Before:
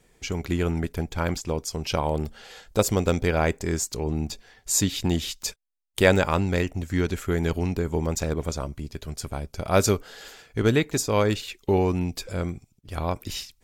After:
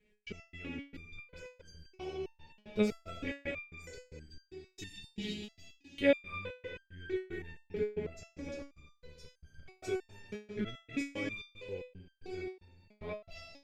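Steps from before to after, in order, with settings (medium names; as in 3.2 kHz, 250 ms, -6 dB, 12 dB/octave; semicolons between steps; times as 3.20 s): FFT filter 400 Hz 0 dB, 1.1 kHz -13 dB, 2.3 kHz +5 dB, 10 kHz -21 dB; algorithmic reverb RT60 2.7 s, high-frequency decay 0.9×, pre-delay 25 ms, DRR 2.5 dB; trance gate "x.x.xx.x" 113 bpm -60 dB; resonator arpeggio 3.1 Hz 210–1600 Hz; trim +3.5 dB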